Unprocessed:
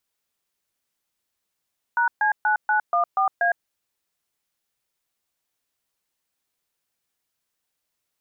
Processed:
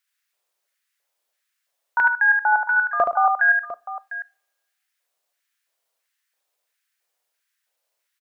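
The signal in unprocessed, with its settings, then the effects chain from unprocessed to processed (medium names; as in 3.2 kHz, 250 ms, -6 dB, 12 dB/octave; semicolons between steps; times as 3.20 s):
DTMF "#C9914A", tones 109 ms, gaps 131 ms, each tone -20 dBFS
LFO high-pass square 1.5 Hz 560–1700 Hz; multi-tap echo 73/130/702 ms -4.5/-18.5/-13.5 dB; two-slope reverb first 0.31 s, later 1.6 s, from -28 dB, DRR 18 dB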